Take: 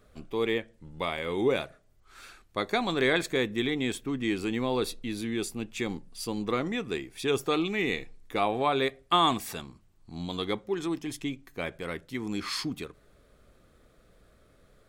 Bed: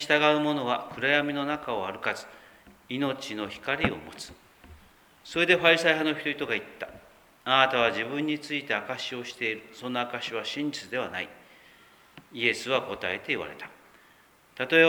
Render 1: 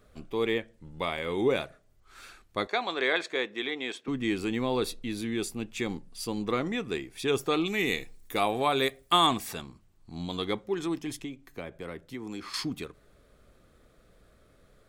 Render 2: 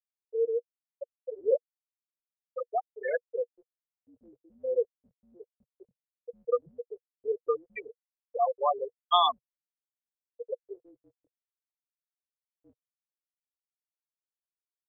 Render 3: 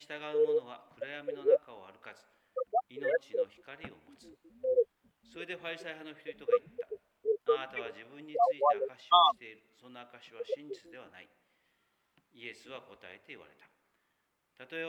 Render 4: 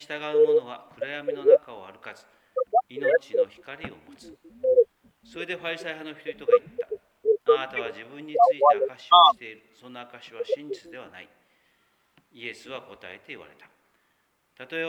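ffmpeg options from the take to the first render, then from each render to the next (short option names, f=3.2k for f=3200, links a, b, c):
-filter_complex "[0:a]asettb=1/sr,asplit=3[a][b][c];[a]atrim=end=2.674[d];[b]atrim=start=2.67:end=4.08,asetpts=PTS-STARTPTS,afade=t=in:d=0.004:c=qsin,afade=t=out:st=1.406:d=0.004:c=qsin,highpass=460,lowpass=5.2k[e];[c]atrim=start=4.076[f];[d][e]acrossfade=d=0.004:c1=hsin:c2=qsin[g];[g][f]acrossfade=d=0.004:c1=qsin:c2=hsin,asettb=1/sr,asplit=3[h][i][j];[h]atrim=end=7.664[k];[i]atrim=start=7.66:end=9.27,asetpts=PTS-STARTPTS,afade=t=in:d=0.004:c=qsin,afade=t=out:st=1.606:d=0.004:c=qsin,aemphasis=mode=production:type=50fm[l];[j]atrim=start=9.266[m];[k][l]acrossfade=d=0.004:c1=hsin:c2=qsin[n];[n][m]acrossfade=d=0.004:c1=qsin:c2=hsin,asettb=1/sr,asplit=3[o][p][q];[o]atrim=end=11.194[r];[p]atrim=start=11.19:end=12.54,asetpts=PTS-STARTPTS,afade=t=in:d=0.004:c=qsin,afade=t=out:st=1.346:d=0.004:c=qsin,acrossover=split=310|1100[s][t][u];[s]acompressor=threshold=-43dB:ratio=4[v];[t]acompressor=threshold=-39dB:ratio=4[w];[u]acompressor=threshold=-47dB:ratio=4[x];[v][w][x]amix=inputs=3:normalize=0[y];[q]atrim=start=12.536[z];[r][y]acrossfade=d=0.004:c1=hsin:c2=qsin[aa];[aa][z]acrossfade=d=0.004:c1=qsin:c2=hsin"
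-af "afftfilt=real='re*gte(hypot(re,im),0.251)':imag='im*gte(hypot(re,im),0.251)':win_size=1024:overlap=0.75,firequalizer=gain_entry='entry(130,0);entry(210,-27);entry(330,-27);entry(480,8);entry(910,1);entry(3700,0);entry(7800,-17);entry(12000,12)':delay=0.05:min_phase=1"
-filter_complex "[1:a]volume=-20.5dB[a];[0:a][a]amix=inputs=2:normalize=0"
-af "volume=9dB,alimiter=limit=-3dB:level=0:latency=1"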